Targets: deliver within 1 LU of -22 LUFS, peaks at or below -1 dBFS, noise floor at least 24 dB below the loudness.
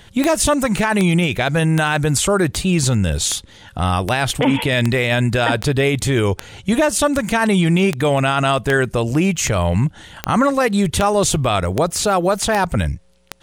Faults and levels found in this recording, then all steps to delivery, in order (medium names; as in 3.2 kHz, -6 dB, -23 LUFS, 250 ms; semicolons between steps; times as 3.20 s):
clicks found 18; loudness -17.5 LUFS; peak level -2.0 dBFS; loudness target -22.0 LUFS
-> de-click; trim -4.5 dB